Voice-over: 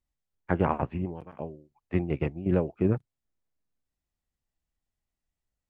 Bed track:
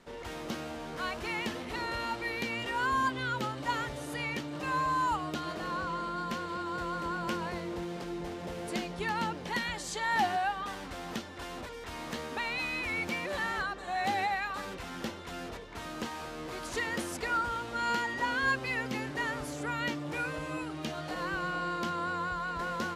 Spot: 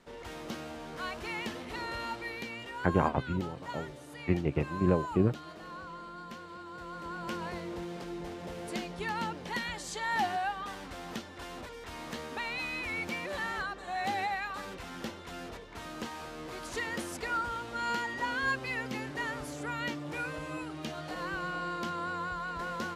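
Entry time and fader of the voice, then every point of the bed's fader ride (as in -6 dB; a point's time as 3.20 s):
2.35 s, -1.5 dB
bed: 2.09 s -2.5 dB
2.88 s -9.5 dB
6.73 s -9.5 dB
7.46 s -2 dB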